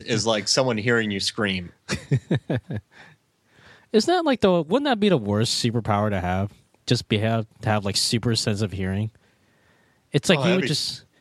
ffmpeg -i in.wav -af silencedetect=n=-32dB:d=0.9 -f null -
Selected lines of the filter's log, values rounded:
silence_start: 2.79
silence_end: 3.94 | silence_duration: 1.15
silence_start: 9.08
silence_end: 10.14 | silence_duration: 1.06